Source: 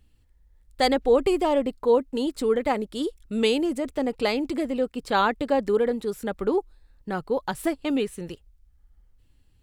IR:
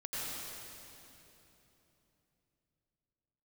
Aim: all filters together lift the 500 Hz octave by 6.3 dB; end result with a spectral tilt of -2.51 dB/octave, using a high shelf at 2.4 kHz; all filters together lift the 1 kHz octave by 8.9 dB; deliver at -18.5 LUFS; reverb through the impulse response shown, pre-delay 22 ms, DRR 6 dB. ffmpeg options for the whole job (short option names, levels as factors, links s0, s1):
-filter_complex "[0:a]equalizer=f=500:t=o:g=5,equalizer=f=1000:t=o:g=9,highshelf=f=2400:g=4,asplit=2[s0][s1];[1:a]atrim=start_sample=2205,adelay=22[s2];[s1][s2]afir=irnorm=-1:irlink=0,volume=0.335[s3];[s0][s3]amix=inputs=2:normalize=0"